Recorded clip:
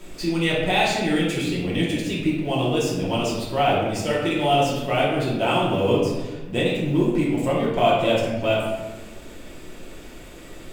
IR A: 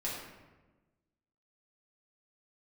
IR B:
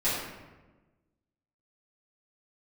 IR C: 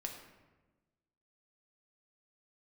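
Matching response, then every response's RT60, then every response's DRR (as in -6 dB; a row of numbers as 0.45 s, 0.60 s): A; 1.2 s, 1.2 s, 1.2 s; -7.0 dB, -13.5 dB, 1.5 dB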